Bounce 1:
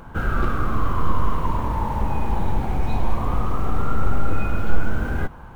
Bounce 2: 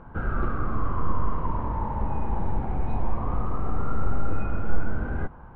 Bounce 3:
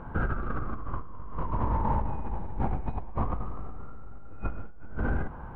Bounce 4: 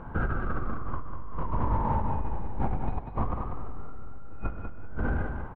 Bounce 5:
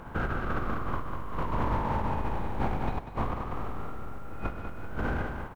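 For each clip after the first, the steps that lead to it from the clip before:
LPF 1600 Hz 12 dB/oct; gain -4.5 dB
negative-ratio compressor -28 dBFS, ratio -1; gain -2.5 dB
feedback echo 0.194 s, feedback 18%, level -6.5 dB
spectral contrast lowered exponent 0.7; gain -3 dB

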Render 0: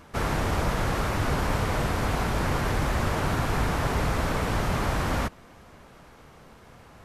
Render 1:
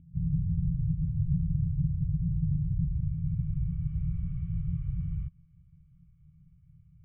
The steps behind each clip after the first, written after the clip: low-pass sweep 180 Hz -> 450 Hz, 2.5–4.05; FFT band-reject 180–1100 Hz; vocal tract filter i; gain +9 dB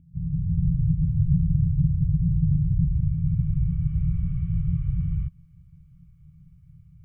AGC gain up to 7 dB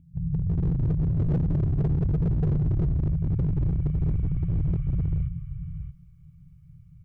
echo 0.627 s -9.5 dB; hard clip -20 dBFS, distortion -11 dB

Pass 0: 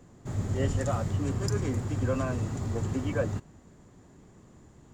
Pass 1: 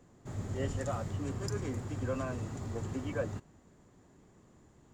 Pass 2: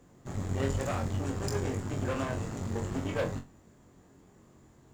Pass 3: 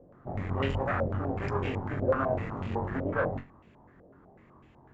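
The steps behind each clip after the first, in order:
tone controls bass -3 dB, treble -1 dB; gain -5 dB
added harmonics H 8 -17 dB, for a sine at -21.5 dBFS; flutter echo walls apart 3.8 m, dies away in 0.22 s; companded quantiser 8-bit; gain +1.5 dB
stepped low-pass 8 Hz 570–2700 Hz

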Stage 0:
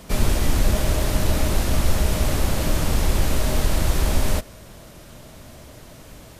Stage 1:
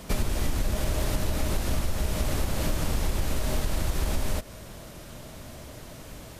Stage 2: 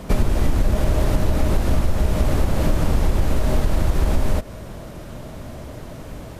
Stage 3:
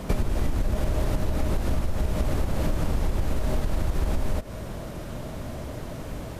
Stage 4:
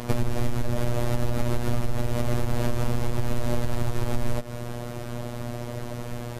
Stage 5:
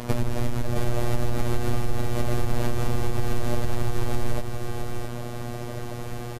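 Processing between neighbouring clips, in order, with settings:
compressor, threshold -22 dBFS, peak gain reduction 10.5 dB
high shelf 2000 Hz -11 dB; gain +9 dB
compressor 3:1, threshold -22 dBFS, peak gain reduction 8.5 dB
robotiser 120 Hz; gain +4 dB
echo 0.665 s -6 dB

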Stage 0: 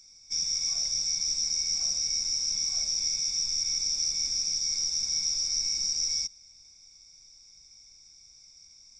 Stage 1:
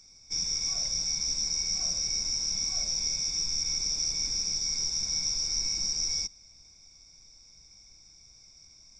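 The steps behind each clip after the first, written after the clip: high shelf 2100 Hz -10 dB; gain +7.5 dB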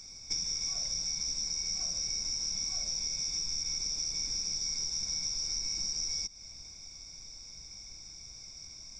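compressor 12:1, threshold -38 dBFS, peak gain reduction 13 dB; gain +7 dB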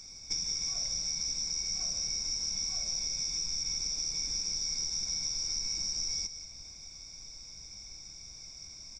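echo 0.18 s -10.5 dB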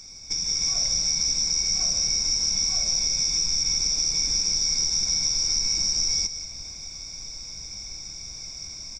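AGC gain up to 5.5 dB; gain +4.5 dB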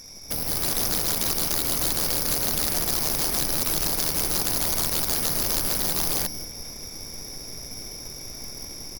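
tracing distortion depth 0.36 ms

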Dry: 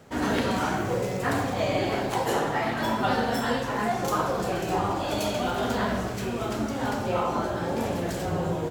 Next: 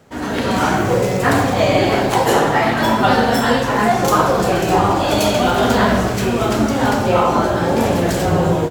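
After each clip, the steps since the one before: AGC gain up to 11.5 dB; gain +1.5 dB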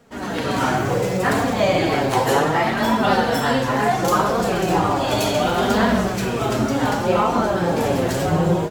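flange 0.68 Hz, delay 4.1 ms, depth 3.9 ms, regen +33%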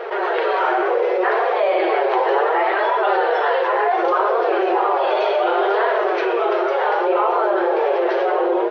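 air absorption 490 m; FFT band-pass 340–6400 Hz; fast leveller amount 70%; gain +1 dB

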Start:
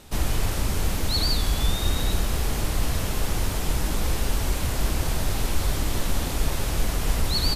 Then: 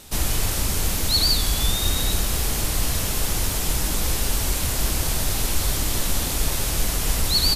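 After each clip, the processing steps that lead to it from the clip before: high shelf 3400 Hz +10 dB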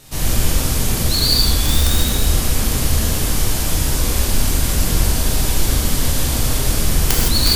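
octaver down 1 oct, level +3 dB; wrapped overs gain 7.5 dB; non-linear reverb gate 0.19 s flat, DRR -5 dB; gain -2.5 dB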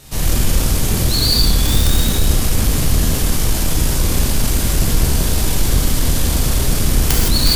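octaver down 1 oct, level +1 dB; in parallel at -5 dB: soft clip -17 dBFS, distortion -9 dB; on the sum: gain -2 dB

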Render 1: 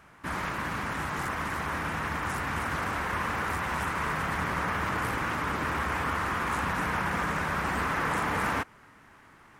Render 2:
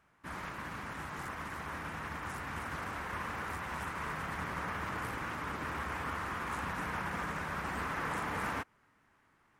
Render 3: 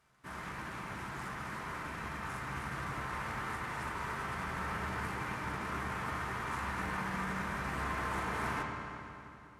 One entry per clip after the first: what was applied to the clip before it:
upward expander 1.5:1, over -42 dBFS; gain -7 dB
CVSD 64 kbps; reverb RT60 2.9 s, pre-delay 4 ms, DRR -1 dB; gain -3.5 dB

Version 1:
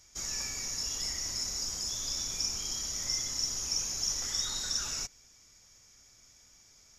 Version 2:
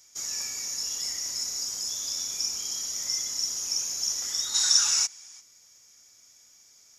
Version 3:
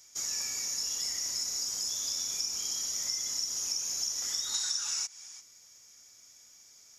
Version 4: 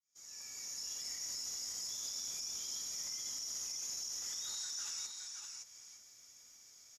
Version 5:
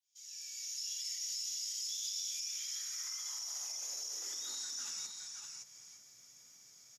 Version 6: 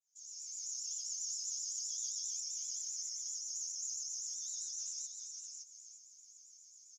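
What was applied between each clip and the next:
HPF 280 Hz 6 dB/oct; spectral gain 4.55–5.41, 740–11000 Hz +9 dB; high shelf 5700 Hz +9.5 dB; gain -1.5 dB
compressor 12:1, threshold -29 dBFS, peak gain reduction 14 dB
opening faded in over 1.41 s; limiter -30 dBFS, peak gain reduction 11 dB; on a send: echo 0.566 s -5.5 dB; on the sum: gain -4 dB
high-pass sweep 3100 Hz -> 130 Hz, 2.28–5.26
band-pass 6500 Hz, Q 5.6; vibrato 7.6 Hz 89 cents; gain +3.5 dB

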